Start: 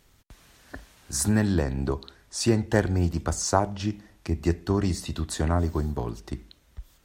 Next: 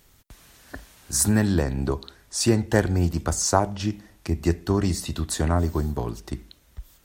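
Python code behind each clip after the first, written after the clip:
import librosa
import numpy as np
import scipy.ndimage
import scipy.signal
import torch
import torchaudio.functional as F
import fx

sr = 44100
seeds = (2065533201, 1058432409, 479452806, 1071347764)

y = fx.high_shelf(x, sr, hz=9300.0, db=8.5)
y = y * 10.0 ** (2.0 / 20.0)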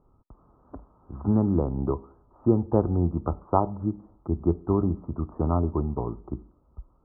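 y = scipy.signal.sosfilt(scipy.signal.cheby1(6, 3, 1300.0, 'lowpass', fs=sr, output='sos'), x)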